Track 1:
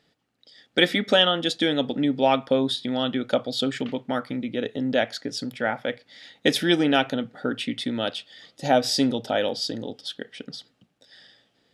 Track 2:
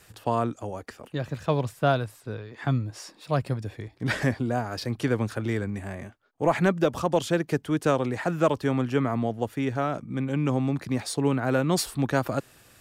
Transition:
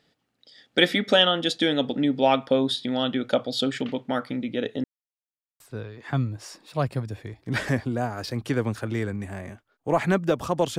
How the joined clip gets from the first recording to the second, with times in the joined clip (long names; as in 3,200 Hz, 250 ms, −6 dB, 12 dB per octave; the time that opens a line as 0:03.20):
track 1
0:04.84–0:05.60: silence
0:05.60: continue with track 2 from 0:02.14